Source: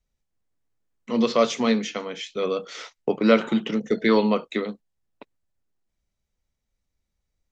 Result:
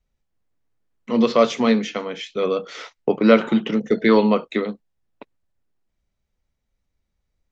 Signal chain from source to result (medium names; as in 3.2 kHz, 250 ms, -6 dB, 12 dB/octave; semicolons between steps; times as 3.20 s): treble shelf 5.7 kHz -11 dB; trim +4 dB